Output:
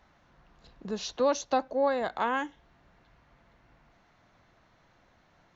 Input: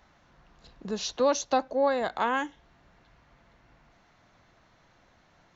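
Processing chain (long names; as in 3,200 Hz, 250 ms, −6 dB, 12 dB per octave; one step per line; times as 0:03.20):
high-shelf EQ 5,200 Hz −5.5 dB
level −1.5 dB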